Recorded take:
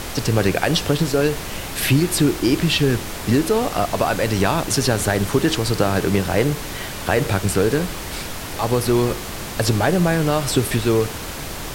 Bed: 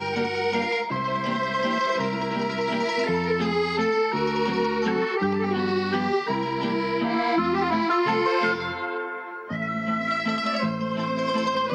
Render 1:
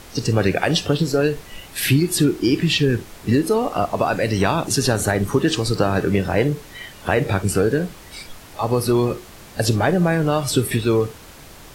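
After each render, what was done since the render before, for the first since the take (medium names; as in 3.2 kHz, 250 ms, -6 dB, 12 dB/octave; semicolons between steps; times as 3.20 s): noise print and reduce 12 dB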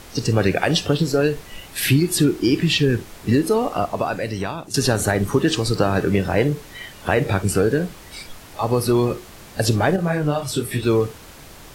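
3.62–4.74 s: fade out, to -14 dB; 9.96–10.83 s: detune thickener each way 35 cents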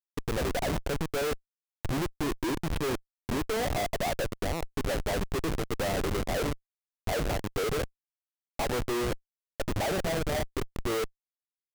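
band-pass filter 670 Hz, Q 2; Schmitt trigger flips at -30 dBFS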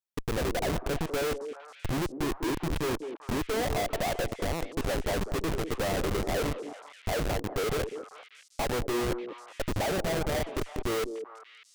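repeats whose band climbs or falls 197 ms, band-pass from 370 Hz, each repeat 1.4 oct, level -6 dB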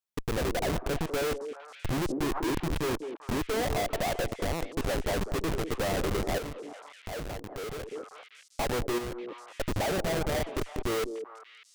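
1.59–2.60 s: decay stretcher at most 30 dB/s; 6.38–7.92 s: compression 3:1, threshold -38 dBFS; 8.98–9.41 s: compression, threshold -34 dBFS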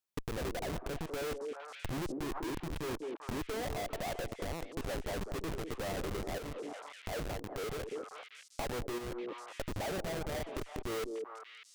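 compression 6:1, threshold -36 dBFS, peak gain reduction 10.5 dB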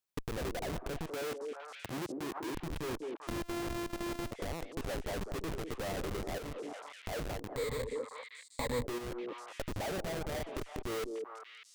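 1.11–2.55 s: Bessel high-pass 170 Hz; 3.27–4.31 s: sorted samples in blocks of 128 samples; 7.56–8.85 s: rippled EQ curve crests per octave 1, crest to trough 14 dB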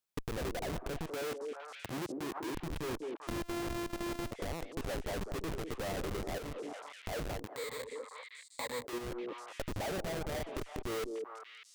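7.46–8.93 s: high-pass 750 Hz 6 dB/octave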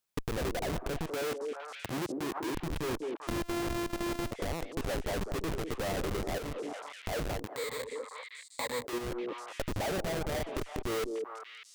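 trim +4 dB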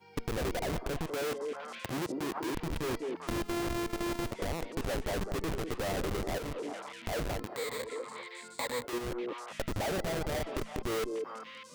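add bed -29 dB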